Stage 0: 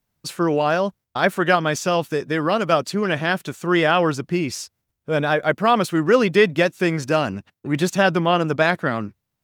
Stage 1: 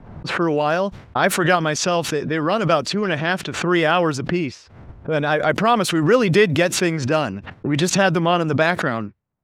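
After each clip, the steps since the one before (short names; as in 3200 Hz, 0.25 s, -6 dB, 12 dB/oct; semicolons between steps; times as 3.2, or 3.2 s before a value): low-pass opened by the level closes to 1000 Hz, open at -14 dBFS; backwards sustainer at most 65 dB/s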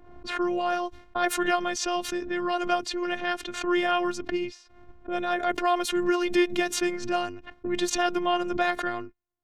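robotiser 353 Hz; gain -5.5 dB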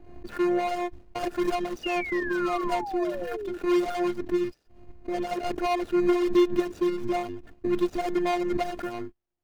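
median filter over 41 samples; painted sound fall, 1.83–3.58, 340–2900 Hz -39 dBFS; gain +4.5 dB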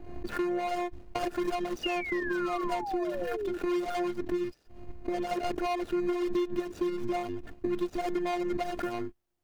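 compressor 4:1, threshold -34 dBFS, peak gain reduction 14.5 dB; gain +4.5 dB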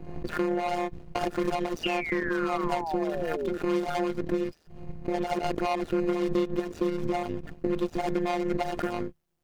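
AM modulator 160 Hz, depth 60%; Doppler distortion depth 0.14 ms; gain +6 dB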